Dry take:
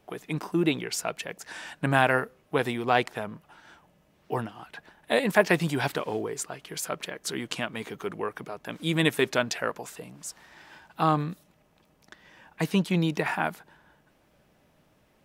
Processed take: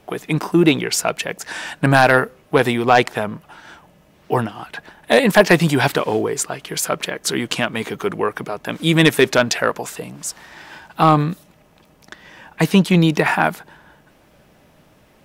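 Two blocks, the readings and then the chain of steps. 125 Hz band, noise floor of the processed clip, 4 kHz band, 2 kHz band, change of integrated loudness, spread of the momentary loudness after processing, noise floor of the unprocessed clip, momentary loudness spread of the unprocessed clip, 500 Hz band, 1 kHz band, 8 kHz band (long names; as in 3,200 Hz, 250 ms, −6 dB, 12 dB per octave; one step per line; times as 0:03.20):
+11.0 dB, −53 dBFS, +10.5 dB, +10.0 dB, +10.5 dB, 15 LU, −65 dBFS, 16 LU, +10.5 dB, +10.0 dB, +11.5 dB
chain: sine wavefolder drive 5 dB, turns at −4 dBFS
level +2.5 dB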